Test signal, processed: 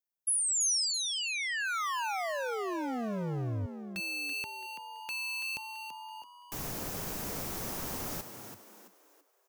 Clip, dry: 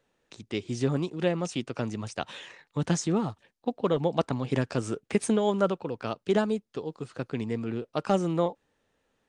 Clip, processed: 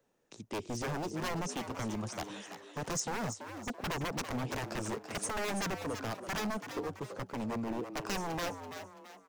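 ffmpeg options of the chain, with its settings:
ffmpeg -i in.wav -filter_complex "[0:a]acrossover=split=110|1200[link_01][link_02][link_03];[link_02]acontrast=61[link_04];[link_01][link_04][link_03]amix=inputs=3:normalize=0,aeval=exprs='0.0708*(abs(mod(val(0)/0.0708+3,4)-2)-1)':channel_layout=same,aexciter=amount=3:drive=1.4:freq=5200,asplit=5[link_05][link_06][link_07][link_08][link_09];[link_06]adelay=333,afreqshift=93,volume=-9dB[link_10];[link_07]adelay=666,afreqshift=186,volume=-17.4dB[link_11];[link_08]adelay=999,afreqshift=279,volume=-25.8dB[link_12];[link_09]adelay=1332,afreqshift=372,volume=-34.2dB[link_13];[link_05][link_10][link_11][link_12][link_13]amix=inputs=5:normalize=0,volume=-7.5dB" out.wav

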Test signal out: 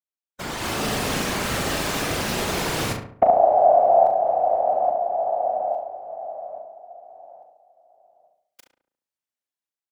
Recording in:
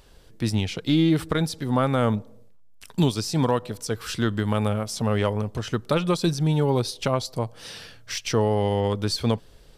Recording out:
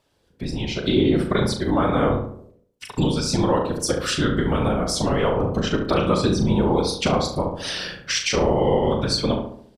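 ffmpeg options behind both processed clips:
ffmpeg -i in.wav -filter_complex "[0:a]acompressor=threshold=-34dB:ratio=2.5,highpass=frequency=140:poles=1,highshelf=frequency=9400:gain=-3,dynaudnorm=framelen=220:gausssize=5:maxgain=9dB,afftdn=noise_reduction=14:noise_floor=-41,afftfilt=real='hypot(re,im)*cos(2*PI*random(0))':imag='hypot(re,im)*sin(2*PI*random(1))':win_size=512:overlap=0.75,asplit=2[link_01][link_02];[link_02]adelay=38,volume=-7dB[link_03];[link_01][link_03]amix=inputs=2:normalize=0,asplit=2[link_04][link_05];[link_05]adelay=70,lowpass=frequency=1700:poles=1,volume=-4.5dB,asplit=2[link_06][link_07];[link_07]adelay=70,lowpass=frequency=1700:poles=1,volume=0.49,asplit=2[link_08][link_09];[link_09]adelay=70,lowpass=frequency=1700:poles=1,volume=0.49,asplit=2[link_10][link_11];[link_11]adelay=70,lowpass=frequency=1700:poles=1,volume=0.49,asplit=2[link_12][link_13];[link_13]adelay=70,lowpass=frequency=1700:poles=1,volume=0.49,asplit=2[link_14][link_15];[link_15]adelay=70,lowpass=frequency=1700:poles=1,volume=0.49[link_16];[link_04][link_06][link_08][link_10][link_12][link_14][link_16]amix=inputs=7:normalize=0,volume=9dB" out.wav

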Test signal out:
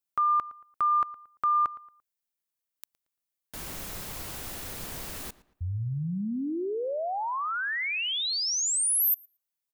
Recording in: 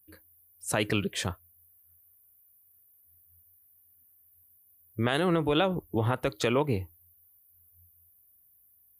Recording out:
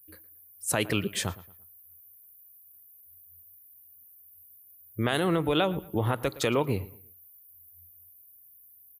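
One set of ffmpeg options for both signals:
ffmpeg -i in.wav -filter_complex "[0:a]highshelf=frequency=9300:gain=10,asplit=2[link_01][link_02];[link_02]adelay=114,lowpass=frequency=3300:poles=1,volume=-18dB,asplit=2[link_03][link_04];[link_04]adelay=114,lowpass=frequency=3300:poles=1,volume=0.34,asplit=2[link_05][link_06];[link_06]adelay=114,lowpass=frequency=3300:poles=1,volume=0.34[link_07];[link_03][link_05][link_07]amix=inputs=3:normalize=0[link_08];[link_01][link_08]amix=inputs=2:normalize=0" out.wav

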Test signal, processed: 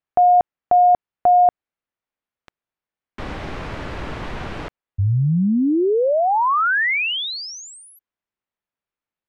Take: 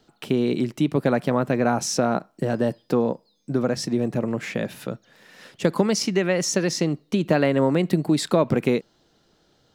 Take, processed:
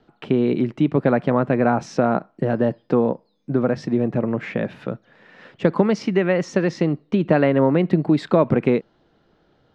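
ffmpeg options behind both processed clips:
ffmpeg -i in.wav -af "lowpass=2300,volume=3dB" out.wav

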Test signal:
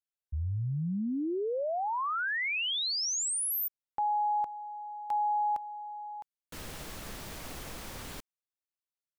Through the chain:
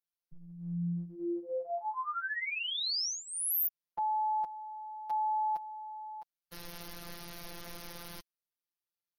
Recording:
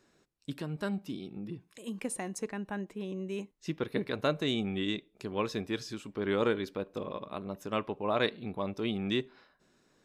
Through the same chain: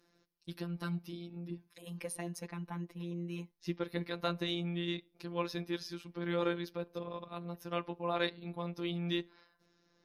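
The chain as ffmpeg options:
ffmpeg -i in.wav -af "aexciter=amount=1.2:drive=1.4:freq=4200,afftfilt=real='hypot(re,im)*cos(PI*b)':imag='0':win_size=1024:overlap=0.75" -ar 44100 -c:a libmp3lame -b:a 64k out.mp3

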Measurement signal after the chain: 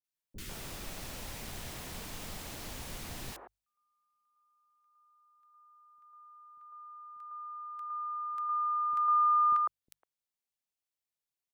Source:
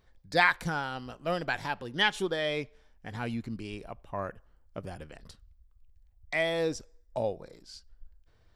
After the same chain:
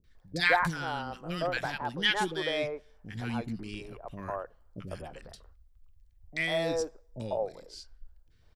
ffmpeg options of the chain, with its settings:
ffmpeg -i in.wav -filter_complex "[0:a]bandreject=frequency=50:width_type=h:width=6,bandreject=frequency=100:width_type=h:width=6,bandreject=frequency=150:width_type=h:width=6,acrossover=split=380|1400[link_01][link_02][link_03];[link_03]adelay=40[link_04];[link_02]adelay=150[link_05];[link_01][link_05][link_04]amix=inputs=3:normalize=0,volume=1.5dB" out.wav

